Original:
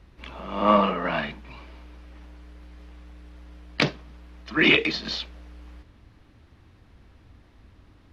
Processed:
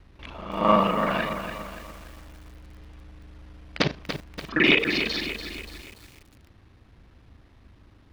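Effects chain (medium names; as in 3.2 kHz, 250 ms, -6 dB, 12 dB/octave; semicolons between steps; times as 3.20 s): time reversed locally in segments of 38 ms; bit-crushed delay 288 ms, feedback 55%, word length 7-bit, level -8 dB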